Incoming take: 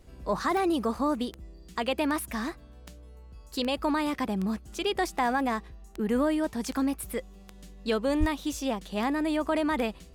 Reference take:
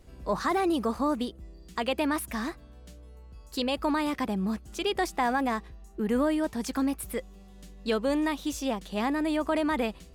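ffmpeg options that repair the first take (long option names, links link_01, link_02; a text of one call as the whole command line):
ffmpeg -i in.wav -filter_complex "[0:a]adeclick=threshold=4,asplit=3[link_01][link_02][link_03];[link_01]afade=type=out:start_time=8.19:duration=0.02[link_04];[link_02]highpass=frequency=140:width=0.5412,highpass=frequency=140:width=1.3066,afade=type=in:start_time=8.19:duration=0.02,afade=type=out:start_time=8.31:duration=0.02[link_05];[link_03]afade=type=in:start_time=8.31:duration=0.02[link_06];[link_04][link_05][link_06]amix=inputs=3:normalize=0" out.wav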